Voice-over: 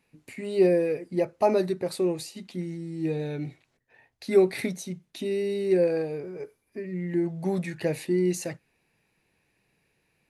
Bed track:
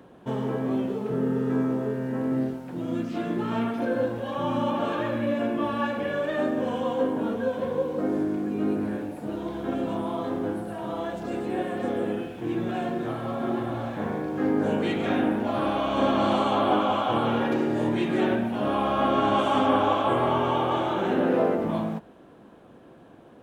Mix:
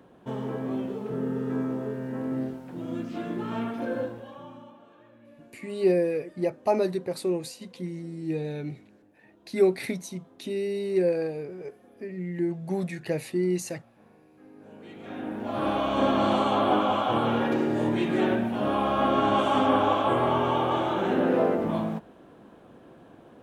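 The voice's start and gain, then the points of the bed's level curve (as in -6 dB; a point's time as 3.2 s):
5.25 s, -1.5 dB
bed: 3.98 s -4 dB
4.85 s -27.5 dB
14.53 s -27.5 dB
15.68 s -0.5 dB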